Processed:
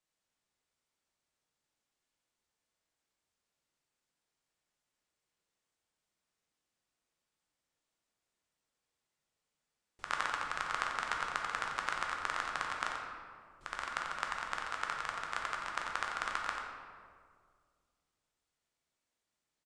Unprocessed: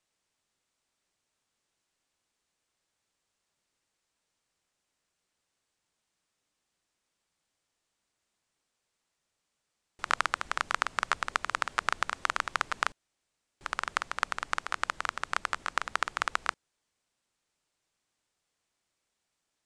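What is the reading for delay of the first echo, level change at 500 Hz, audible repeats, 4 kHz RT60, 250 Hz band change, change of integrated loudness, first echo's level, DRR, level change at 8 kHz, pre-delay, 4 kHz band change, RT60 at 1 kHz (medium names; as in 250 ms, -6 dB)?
90 ms, -4.0 dB, 1, 1.1 s, -3.5 dB, -5.5 dB, -8.0 dB, -1.0 dB, -6.5 dB, 8 ms, -5.5 dB, 1.8 s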